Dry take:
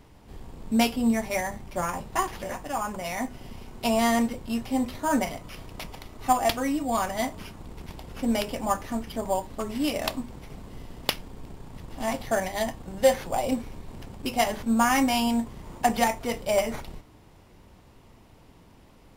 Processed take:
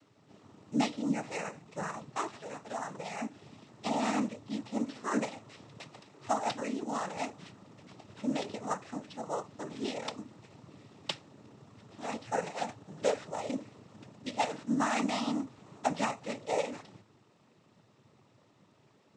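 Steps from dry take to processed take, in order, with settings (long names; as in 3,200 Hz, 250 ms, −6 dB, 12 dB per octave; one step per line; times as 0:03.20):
0:04.85–0:05.34: comb filter 3.9 ms, depth 69%
cochlear-implant simulation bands 12
level −8 dB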